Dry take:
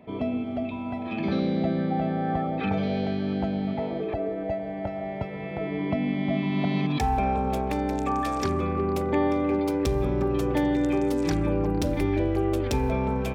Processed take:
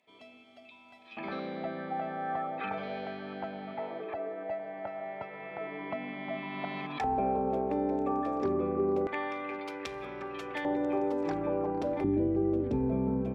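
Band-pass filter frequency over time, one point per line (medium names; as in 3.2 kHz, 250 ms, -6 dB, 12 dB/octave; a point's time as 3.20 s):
band-pass filter, Q 1.1
7.3 kHz
from 1.17 s 1.3 kHz
from 7.04 s 440 Hz
from 9.07 s 2 kHz
from 10.65 s 730 Hz
from 12.04 s 240 Hz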